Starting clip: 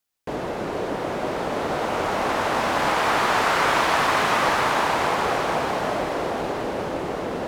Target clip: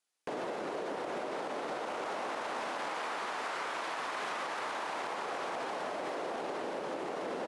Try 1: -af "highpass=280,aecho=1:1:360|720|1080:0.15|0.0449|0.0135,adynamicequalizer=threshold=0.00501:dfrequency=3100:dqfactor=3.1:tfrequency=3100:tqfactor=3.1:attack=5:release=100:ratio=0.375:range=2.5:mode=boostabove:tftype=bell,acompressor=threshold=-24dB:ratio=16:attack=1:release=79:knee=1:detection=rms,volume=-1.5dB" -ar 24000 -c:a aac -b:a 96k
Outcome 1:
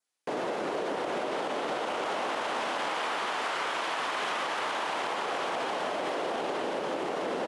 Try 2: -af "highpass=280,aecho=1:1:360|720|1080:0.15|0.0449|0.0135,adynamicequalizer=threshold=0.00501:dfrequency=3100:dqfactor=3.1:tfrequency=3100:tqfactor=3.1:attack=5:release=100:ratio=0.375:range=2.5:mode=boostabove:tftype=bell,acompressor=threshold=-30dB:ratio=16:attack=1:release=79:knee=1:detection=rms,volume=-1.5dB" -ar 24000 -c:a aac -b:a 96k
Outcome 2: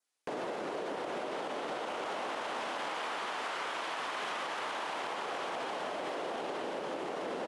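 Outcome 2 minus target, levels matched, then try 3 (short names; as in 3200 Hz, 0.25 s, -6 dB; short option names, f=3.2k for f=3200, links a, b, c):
4000 Hz band +3.0 dB
-af "highpass=280,aecho=1:1:360|720|1080:0.15|0.0449|0.0135,acompressor=threshold=-30dB:ratio=16:attack=1:release=79:knee=1:detection=rms,volume=-1.5dB" -ar 24000 -c:a aac -b:a 96k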